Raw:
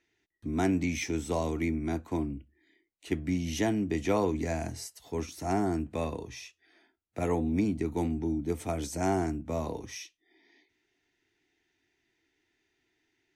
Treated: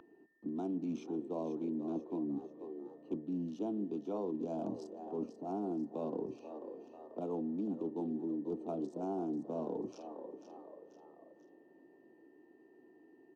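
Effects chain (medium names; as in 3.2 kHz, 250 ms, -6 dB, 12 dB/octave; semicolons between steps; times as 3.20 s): local Wiener filter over 25 samples; high-pass 190 Hz 24 dB/octave; peaking EQ 340 Hz +5 dB 2.7 oct; reverse; compression 6:1, threshold -39 dBFS, peak gain reduction 19 dB; reverse; whistle 1.8 kHz -48 dBFS; Butterworth band-stop 1.9 kHz, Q 1.1; tape spacing loss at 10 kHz 20 dB; frequency-shifting echo 489 ms, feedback 33%, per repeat +72 Hz, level -12.5 dB; on a send at -20.5 dB: reverberation RT60 4.2 s, pre-delay 34 ms; on the sum: three bands compressed up and down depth 40%; trim +3.5 dB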